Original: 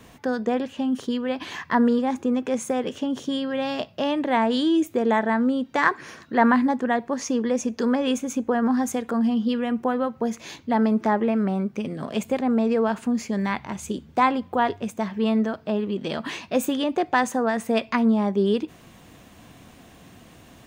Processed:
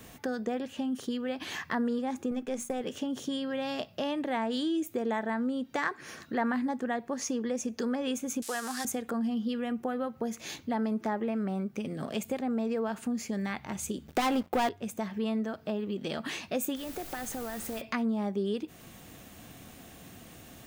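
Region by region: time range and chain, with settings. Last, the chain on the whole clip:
0:02.31–0:02.81: gain on one half-wave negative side −3 dB + mains-hum notches 60/120/180/240/300 Hz + downward expander −32 dBFS
0:08.42–0:08.85: spike at every zero crossing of −29.5 dBFS + meter weighting curve ITU-R 468 + one half of a high-frequency compander encoder only
0:14.07–0:14.69: dynamic equaliser 110 Hz, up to −4 dB, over −49 dBFS, Q 1.7 + leveller curve on the samples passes 3
0:16.75–0:17.80: downward compressor 3 to 1, threshold −34 dBFS + background noise pink −45 dBFS
whole clip: high-shelf EQ 8,800 Hz +11.5 dB; notch filter 1,000 Hz, Q 9.9; downward compressor 2 to 1, threshold −32 dBFS; level −2 dB

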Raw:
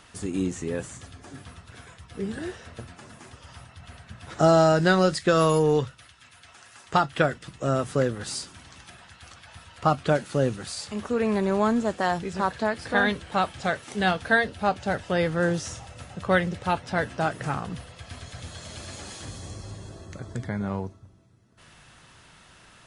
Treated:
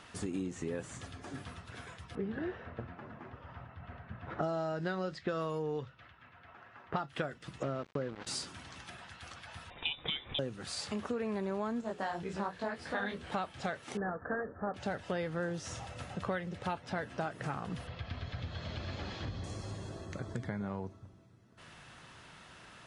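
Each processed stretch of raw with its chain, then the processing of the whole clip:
0:02.15–0:07.08: high-frequency loss of the air 66 metres + low-pass that shuts in the quiet parts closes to 1,600 Hz, open at −15 dBFS
0:07.63–0:08.27: mains-hum notches 50/100 Hz + centre clipping without the shift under −31.5 dBFS + high-frequency loss of the air 170 metres
0:09.70–0:10.39: voice inversion scrambler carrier 3,700 Hz + spectral tilt −3.5 dB per octave
0:11.81–0:13.24: mains-hum notches 60/120/180/240/300/360/420/480 Hz + micro pitch shift up and down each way 42 cents
0:13.97–0:14.74: variable-slope delta modulation 16 kbit/s + Chebyshev low-pass with heavy ripple 1,800 Hz, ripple 6 dB
0:17.87–0:19.44: low-pass filter 4,600 Hz 24 dB per octave + low-shelf EQ 130 Hz +10.5 dB
whole clip: high-shelf EQ 6,300 Hz −9.5 dB; downward compressor 6 to 1, threshold −33 dBFS; low-shelf EQ 62 Hz −10 dB

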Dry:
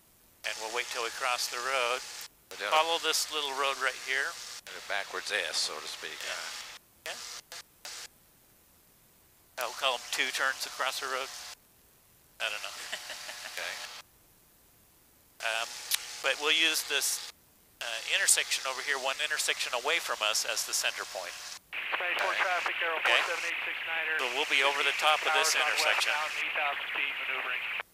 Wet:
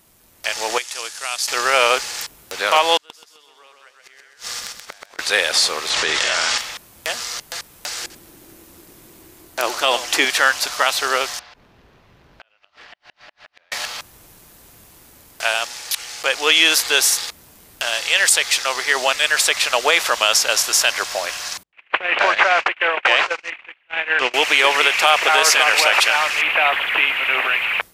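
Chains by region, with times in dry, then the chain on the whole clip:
0:00.78–0:01.48: mu-law and A-law mismatch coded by A + low-pass filter 11,000 Hz 24 dB per octave + first-order pre-emphasis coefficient 0.8
0:02.97–0:05.19: gate with flip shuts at −29 dBFS, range −34 dB + repeating echo 129 ms, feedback 35%, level −3.5 dB
0:05.90–0:06.58: low-pass filter 8,300 Hz 24 dB per octave + envelope flattener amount 100%
0:08.01–0:10.25: parametric band 330 Hz +12.5 dB 0.55 octaves + single-tap delay 89 ms −15 dB
0:11.39–0:13.72: gate with flip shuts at −25 dBFS, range −36 dB + high-frequency loss of the air 260 metres + downward compressor 3 to 1, threshold −58 dBFS
0:21.63–0:24.34: noise gate −32 dBFS, range −39 dB + Bessel low-pass filter 5,500 Hz, order 6
whole clip: automatic gain control gain up to 8 dB; boost into a limiter +7.5 dB; level −1 dB

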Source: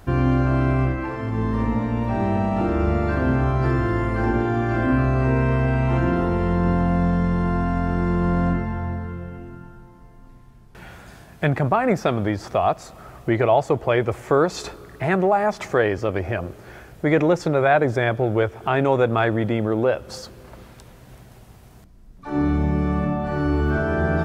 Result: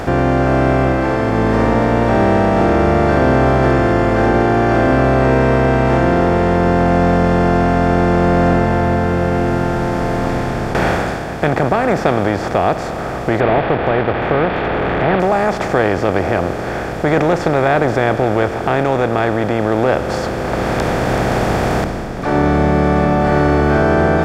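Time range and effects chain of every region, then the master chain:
0:13.40–0:15.20: linear delta modulator 16 kbit/s, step −26 dBFS + upward compression, threshold −27 dBFS
whole clip: compressor on every frequency bin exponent 0.4; automatic gain control; level −1 dB

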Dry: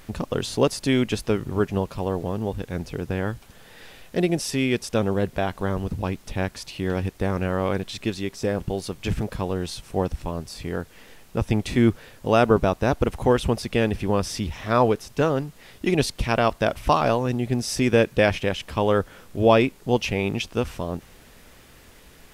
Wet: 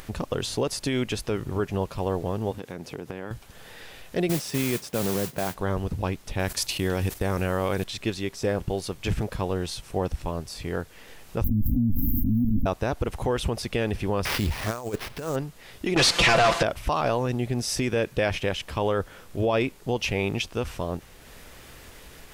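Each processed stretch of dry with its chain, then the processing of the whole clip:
0:02.51–0:03.31: high-pass filter 210 Hz + low-shelf EQ 350 Hz +6 dB + downward compressor, threshold −29 dBFS
0:04.29–0:05.55: high-pass with resonance 140 Hz, resonance Q 1.6 + high-shelf EQ 3,400 Hz −8 dB + noise that follows the level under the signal 10 dB
0:06.39–0:07.84: noise gate −40 dBFS, range −16 dB + high-shelf EQ 6,100 Hz +11.5 dB + envelope flattener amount 50%
0:11.44–0:12.66: lower of the sound and its delayed copy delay 3.5 ms + linear-phase brick-wall band-stop 290–13,000 Hz + envelope flattener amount 100%
0:14.25–0:15.36: compressor whose output falls as the input rises −25 dBFS, ratio −0.5 + sample-rate reduction 7,500 Hz, jitter 20%
0:15.96–0:16.63: comb filter 5.9 ms, depth 80% + mid-hump overdrive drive 32 dB, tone 5,400 Hz, clips at −5.5 dBFS + low-pass filter 8,400 Hz
whole clip: brickwall limiter −14 dBFS; parametric band 220 Hz −3.5 dB 0.92 octaves; upward compression, threshold −39 dBFS

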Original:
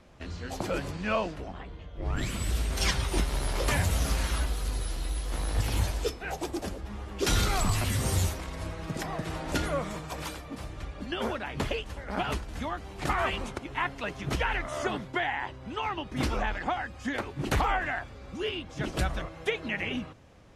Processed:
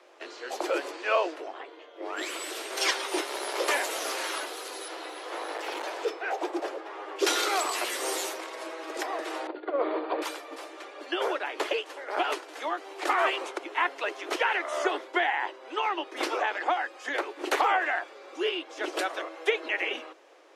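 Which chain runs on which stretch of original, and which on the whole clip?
0:04.88–0:07.16: gain into a clipping stage and back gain 24 dB + mid-hump overdrive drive 13 dB, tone 1,300 Hz, clips at −24 dBFS
0:09.47–0:10.22: spectral tilt −4.5 dB per octave + compressor whose output falls as the input rises −22 dBFS, ratio −0.5 + linear-phase brick-wall low-pass 4,800 Hz
whole clip: Butterworth high-pass 320 Hz 72 dB per octave; high-shelf EQ 6,200 Hz −5 dB; level +4 dB

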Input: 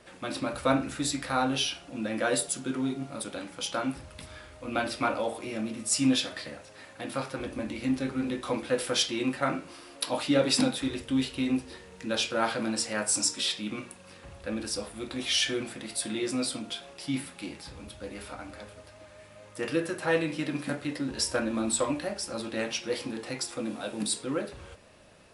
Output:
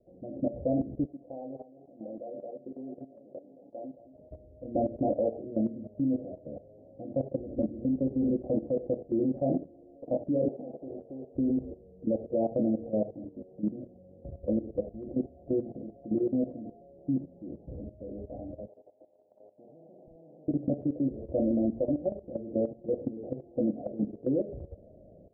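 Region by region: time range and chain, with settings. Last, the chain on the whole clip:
0:01.05–0:04.31: high-pass filter 1,400 Hz 6 dB per octave + delay that swaps between a low-pass and a high-pass 220 ms, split 1,300 Hz, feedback 62%, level −8 dB + one half of a high-frequency compander decoder only
0:10.48–0:11.35: band-pass filter 460–7,000 Hz + every bin compressed towards the loudest bin 2 to 1
0:18.67–0:20.48: Chebyshev band-pass filter 900–2,900 Hz + hard clipping −24 dBFS + every bin compressed towards the loudest bin 10 to 1
whole clip: automatic gain control gain up to 5.5 dB; Butterworth low-pass 680 Hz 72 dB per octave; output level in coarse steps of 14 dB; level +2 dB

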